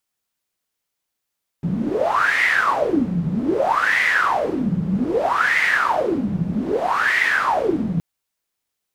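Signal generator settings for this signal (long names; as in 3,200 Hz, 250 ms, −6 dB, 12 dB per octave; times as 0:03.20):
wind from filtered noise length 6.37 s, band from 170 Hz, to 2,000 Hz, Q 11, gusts 4, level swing 4 dB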